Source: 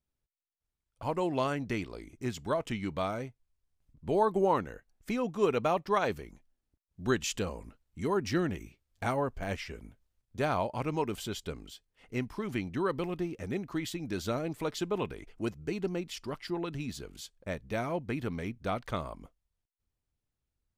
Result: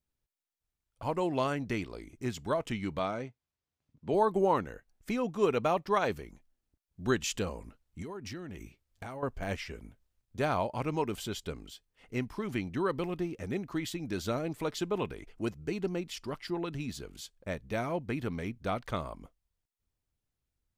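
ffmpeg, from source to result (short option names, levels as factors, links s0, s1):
-filter_complex "[0:a]asettb=1/sr,asplit=3[s0][s1][s2];[s0]atrim=end=2.994[s3];[s1]atrim=start=2.99:end=4.14,asetpts=PTS-STARTPTS,afade=t=in:d=0.004:c=qsin,afade=t=out:st=1.146:d=0.004:c=qsin,highpass=120,lowpass=6200[s4];[s2]atrim=start=4.136[s5];[s3][s4]acrossfade=d=0.004:c1=hsin:c2=qsin[s6];[s6][s5]acrossfade=d=0.004:c1=qsin:c2=hsin,asettb=1/sr,asplit=3[s7][s8][s9];[s7]atrim=end=8.024[s10];[s8]atrim=start=8.02:end=9.23,asetpts=PTS-STARTPTS,afade=t=in:d=0.004:c=qsin,afade=t=out:st=1.206:d=0.004:c=qsin,acompressor=threshold=0.0126:ratio=8:attack=3.2:release=140:knee=1:detection=peak[s11];[s9]atrim=start=9.226[s12];[s10][s11]acrossfade=d=0.004:c1=hsin:c2=qsin[s13];[s13][s12]acrossfade=d=0.004:c1=qsin:c2=hsin"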